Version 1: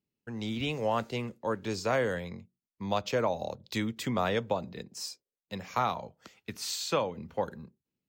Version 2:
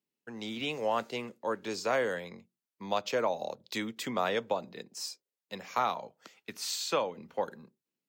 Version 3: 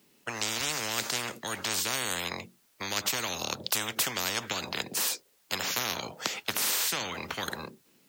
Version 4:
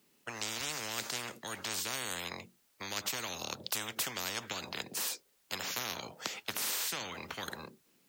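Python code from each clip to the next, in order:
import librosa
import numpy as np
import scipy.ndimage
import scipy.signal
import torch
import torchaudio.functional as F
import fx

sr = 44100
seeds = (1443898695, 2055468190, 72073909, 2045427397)

y1 = scipy.signal.sosfilt(scipy.signal.bessel(2, 300.0, 'highpass', norm='mag', fs=sr, output='sos'), x)
y2 = fx.spectral_comp(y1, sr, ratio=10.0)
y2 = y2 * librosa.db_to_amplitude(7.0)
y3 = fx.dmg_noise_colour(y2, sr, seeds[0], colour='white', level_db=-70.0)
y3 = y3 * librosa.db_to_amplitude(-6.5)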